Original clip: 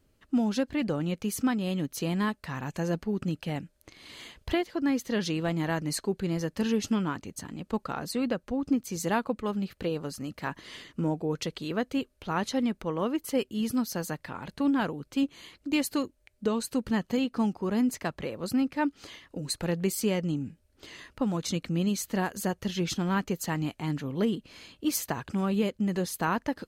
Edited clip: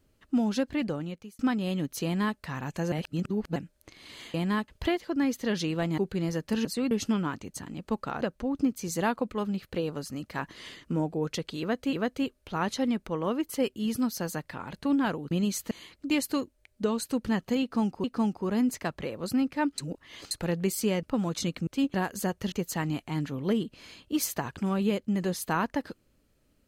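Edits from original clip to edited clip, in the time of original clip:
0.77–1.39 fade out
2.04–2.38 copy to 4.34
2.92–3.56 reverse
5.64–6.06 cut
8.03–8.29 move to 6.73
11.68–12.01 loop, 2 plays
15.06–15.33 swap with 21.75–22.15
17.24–17.66 loop, 2 plays
18.98–19.51 reverse
20.23–21.11 cut
22.73–23.24 cut

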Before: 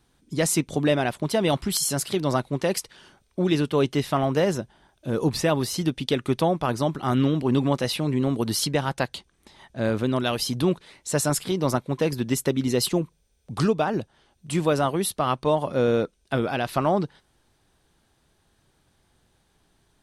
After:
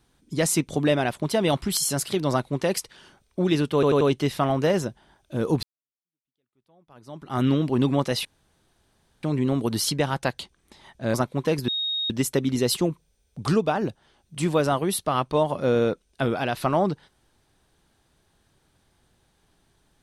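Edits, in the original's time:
3.74 stutter 0.09 s, 4 plays
5.36–7.14 fade in exponential
7.98 insert room tone 0.98 s
9.89–11.68 cut
12.22 add tone 3740 Hz -24 dBFS 0.42 s

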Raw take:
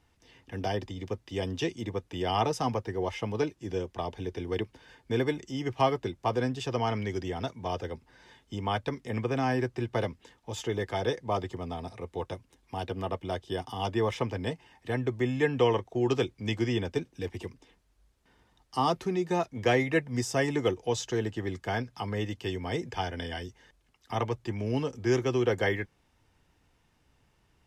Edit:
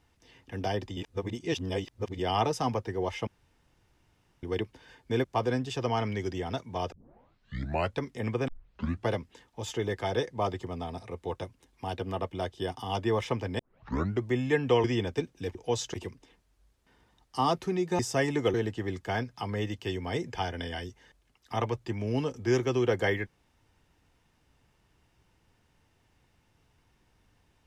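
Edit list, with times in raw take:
0.97–2.19 reverse
3.27–4.43 room tone
5.24–6.14 cut
7.82 tape start 1.06 s
9.38 tape start 0.60 s
14.49 tape start 0.63 s
15.74–16.62 cut
19.38–20.19 cut
20.74–21.13 move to 17.33

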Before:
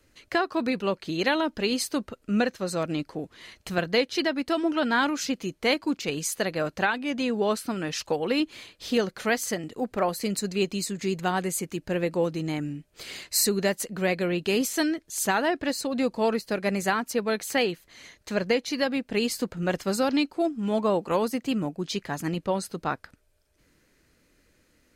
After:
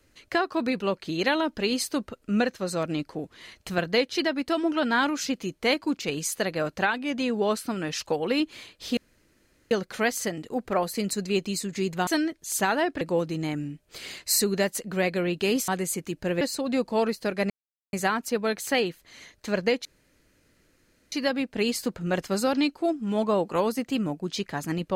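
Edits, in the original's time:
8.97 insert room tone 0.74 s
11.33–12.06 swap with 14.73–15.67
16.76 insert silence 0.43 s
18.68 insert room tone 1.27 s

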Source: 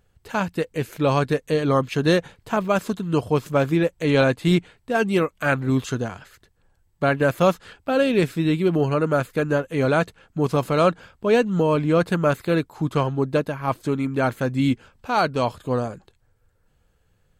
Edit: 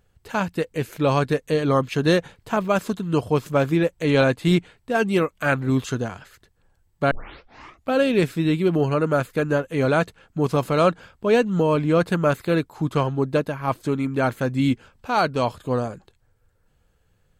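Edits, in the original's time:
7.11 tape start 0.81 s

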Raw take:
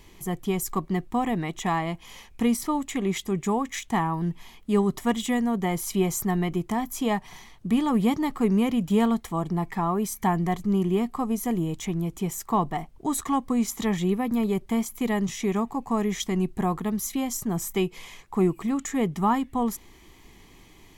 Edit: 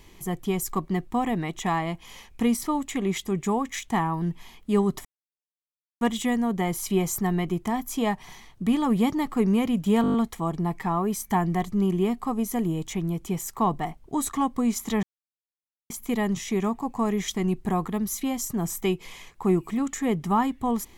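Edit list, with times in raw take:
5.05 insert silence 0.96 s
9.06 stutter 0.02 s, 7 plays
13.95–14.82 mute

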